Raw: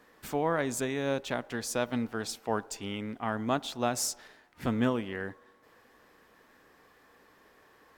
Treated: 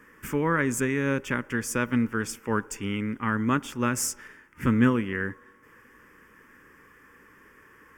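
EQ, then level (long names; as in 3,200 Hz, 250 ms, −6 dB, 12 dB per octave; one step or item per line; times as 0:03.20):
high-shelf EQ 10,000 Hz −5.5 dB
phaser with its sweep stopped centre 1,700 Hz, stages 4
+9.0 dB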